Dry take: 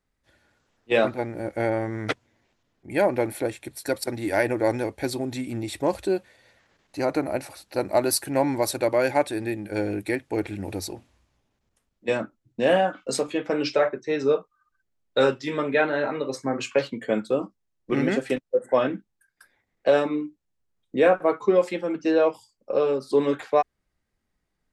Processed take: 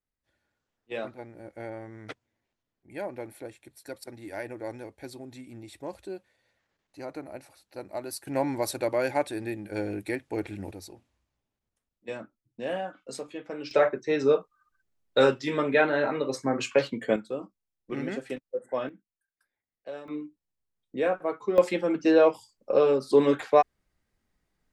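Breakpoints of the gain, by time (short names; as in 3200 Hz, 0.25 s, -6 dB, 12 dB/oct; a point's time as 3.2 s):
-14 dB
from 8.27 s -5 dB
from 10.71 s -12 dB
from 13.71 s -0.5 dB
from 17.16 s -9.5 dB
from 18.89 s -20 dB
from 20.08 s -8 dB
from 21.58 s +1 dB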